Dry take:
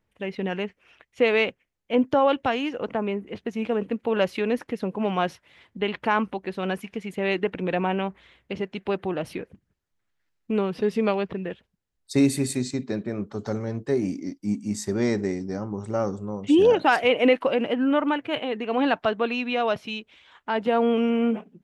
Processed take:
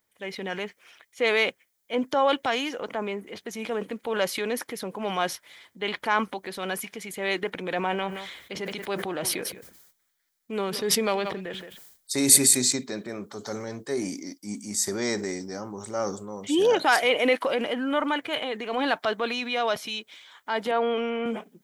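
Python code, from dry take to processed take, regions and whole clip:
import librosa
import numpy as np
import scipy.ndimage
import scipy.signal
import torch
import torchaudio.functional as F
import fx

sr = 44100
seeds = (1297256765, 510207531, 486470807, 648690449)

y = fx.chain(x, sr, fx.echo_single(ms=172, db=-20.5),
    fx.sustainer(db_per_s=75.0), at=(7.75, 12.77))
y = fx.chain(y, sr, fx.bandpass_edges(low_hz=140.0, high_hz=3400.0),
    fx.peak_eq(hz=180.0, db=-13.0, octaves=0.39), at=(20.71, 21.26))
y = fx.riaa(y, sr, side='recording')
y = fx.notch(y, sr, hz=2700.0, q=6.9)
y = fx.transient(y, sr, attack_db=-3, sustain_db=4)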